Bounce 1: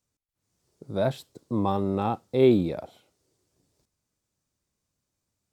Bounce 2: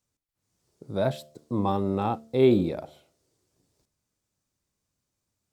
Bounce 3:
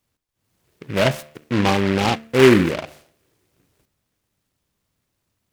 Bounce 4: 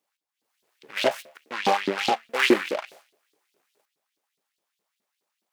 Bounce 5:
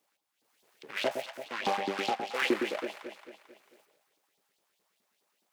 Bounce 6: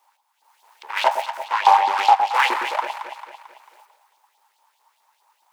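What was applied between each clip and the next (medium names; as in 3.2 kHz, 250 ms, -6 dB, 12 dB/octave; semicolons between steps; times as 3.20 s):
de-hum 74.88 Hz, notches 9
delay time shaken by noise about 1.7 kHz, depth 0.14 ms; trim +7.5 dB
small resonant body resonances 200/810 Hz, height 6 dB; LFO high-pass saw up 4.8 Hz 310–4300 Hz; trim -6 dB
echo whose repeats swap between lows and highs 111 ms, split 890 Hz, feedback 59%, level -5.5 dB; three bands compressed up and down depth 40%; trim -8 dB
resonant high-pass 910 Hz, resonance Q 8.9; trim +8 dB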